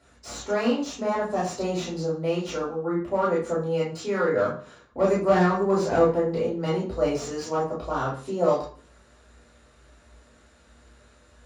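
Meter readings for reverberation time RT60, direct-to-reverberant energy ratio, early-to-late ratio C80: 0.45 s, −7.5 dB, 10.5 dB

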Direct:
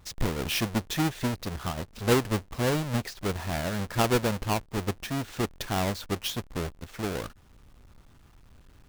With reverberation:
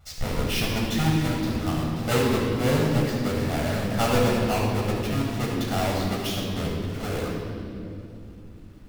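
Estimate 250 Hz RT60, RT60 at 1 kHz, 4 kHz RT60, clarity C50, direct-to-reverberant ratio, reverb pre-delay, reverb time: 4.6 s, 2.2 s, 2.0 s, −0.5 dB, −5.0 dB, 14 ms, 2.7 s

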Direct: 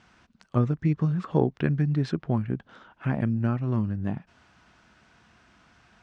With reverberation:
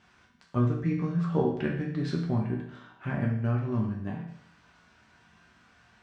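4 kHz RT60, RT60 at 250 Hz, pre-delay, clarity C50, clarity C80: 0.65 s, 0.70 s, 5 ms, 5.0 dB, 8.0 dB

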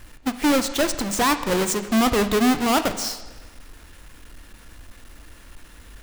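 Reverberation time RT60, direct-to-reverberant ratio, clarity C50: 1.3 s, 10.0 dB, 12.0 dB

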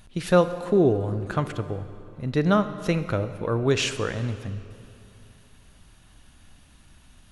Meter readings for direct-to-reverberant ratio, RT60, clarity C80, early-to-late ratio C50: 11.0 dB, 2.7 s, 12.5 dB, 11.5 dB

